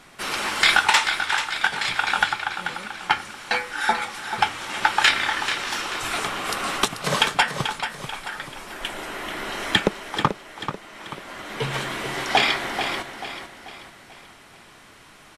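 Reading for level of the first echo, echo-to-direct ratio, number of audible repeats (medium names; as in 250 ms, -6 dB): -9.0 dB, -8.0 dB, 4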